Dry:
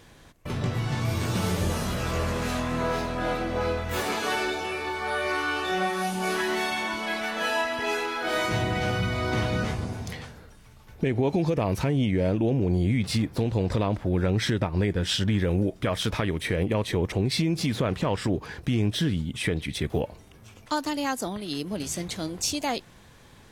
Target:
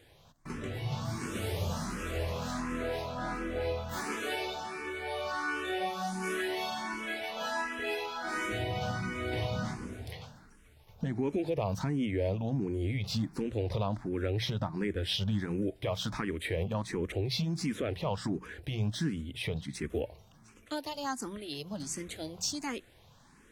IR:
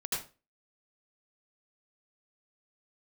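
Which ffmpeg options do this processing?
-filter_complex "[0:a]bandreject=f=60:t=h:w=6,bandreject=f=120:t=h:w=6,bandreject=f=180:t=h:w=6,asplit=2[a][b];[b]afreqshift=1.4[c];[a][c]amix=inputs=2:normalize=1,volume=-4.5dB"

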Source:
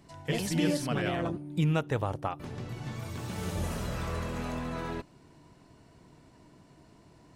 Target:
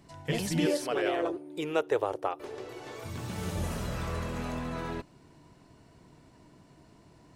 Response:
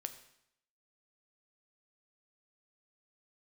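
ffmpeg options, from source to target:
-filter_complex "[0:a]asettb=1/sr,asplit=3[a][b][c];[a]atrim=end=0.664[d];[b]atrim=start=0.66:end=3.04,asetpts=PTS-STARTPTS,afade=t=in:d=0.004:c=qsin,afade=t=out:st=2.376:d=0.004:c=qsin,lowshelf=f=270:t=q:w=3:g=-13.5[e];[c]atrim=start=3.036[f];[d][e]acrossfade=d=0.004:c1=hsin:c2=qsin[g];[g][f]acrossfade=d=0.004:c1=qsin:c2=hsin"

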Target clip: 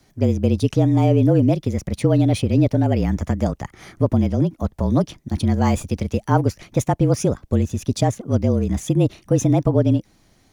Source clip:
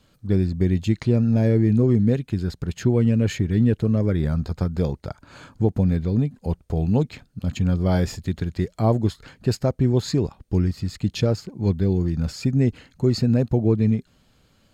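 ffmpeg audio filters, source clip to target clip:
-af "afreqshift=-25,asetrate=61740,aresample=44100,volume=2.5dB"

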